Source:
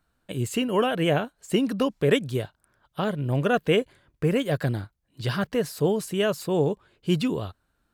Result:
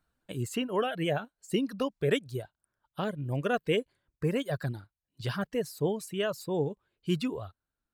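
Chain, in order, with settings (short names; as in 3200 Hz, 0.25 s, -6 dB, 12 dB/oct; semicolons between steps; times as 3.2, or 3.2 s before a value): reverb removal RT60 1.9 s; gain -5.5 dB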